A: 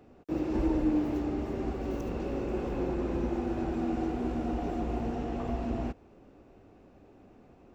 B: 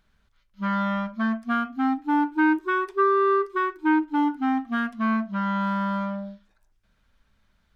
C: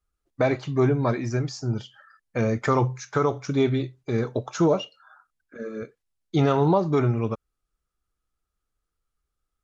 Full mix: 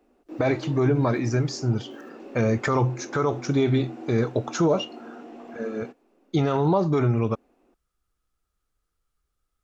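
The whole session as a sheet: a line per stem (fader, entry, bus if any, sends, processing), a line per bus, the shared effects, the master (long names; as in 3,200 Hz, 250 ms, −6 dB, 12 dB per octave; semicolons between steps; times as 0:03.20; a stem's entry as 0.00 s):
−6.0 dB, 0.00 s, no send, Chebyshev high-pass filter 250 Hz, order 3
muted
+3.0 dB, 0.00 s, no send, no processing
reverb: not used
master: brickwall limiter −12.5 dBFS, peak gain reduction 7.5 dB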